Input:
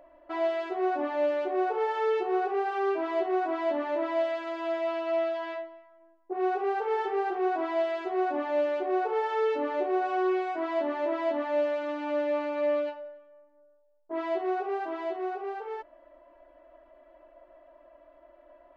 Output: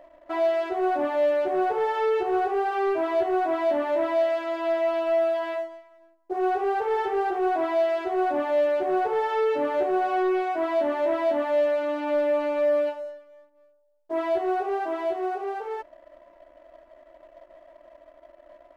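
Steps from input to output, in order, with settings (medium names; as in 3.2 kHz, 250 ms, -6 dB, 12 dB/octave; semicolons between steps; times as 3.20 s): peaking EQ 630 Hz +3.5 dB 0.44 oct; waveshaping leveller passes 1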